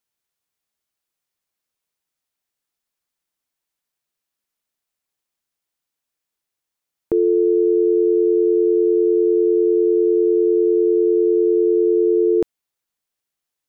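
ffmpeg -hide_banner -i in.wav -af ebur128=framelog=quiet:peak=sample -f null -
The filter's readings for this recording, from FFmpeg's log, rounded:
Integrated loudness:
  I:         -16.5 LUFS
  Threshold: -26.6 LUFS
Loudness range:
  LRA:         6.4 LU
  Threshold: -37.6 LUFS
  LRA low:   -22.7 LUFS
  LRA high:  -16.3 LUFS
Sample peak:
  Peak:       -9.5 dBFS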